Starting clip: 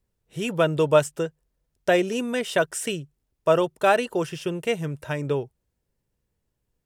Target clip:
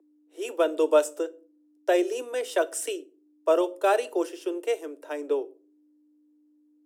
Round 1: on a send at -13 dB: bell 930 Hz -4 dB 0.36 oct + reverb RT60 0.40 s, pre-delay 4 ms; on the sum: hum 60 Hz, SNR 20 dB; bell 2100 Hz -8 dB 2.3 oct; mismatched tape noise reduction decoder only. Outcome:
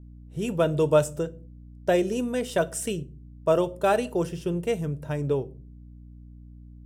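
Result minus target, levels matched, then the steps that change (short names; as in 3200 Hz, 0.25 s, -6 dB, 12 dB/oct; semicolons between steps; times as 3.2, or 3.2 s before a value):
250 Hz band +3.0 dB
add after hum: steep high-pass 290 Hz 96 dB/oct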